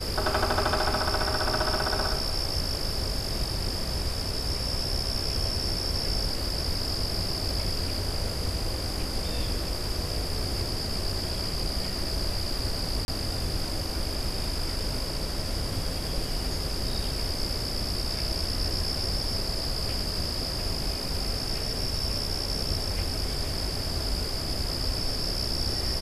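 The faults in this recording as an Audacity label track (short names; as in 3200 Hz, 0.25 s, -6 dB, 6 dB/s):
13.050000	13.080000	gap 31 ms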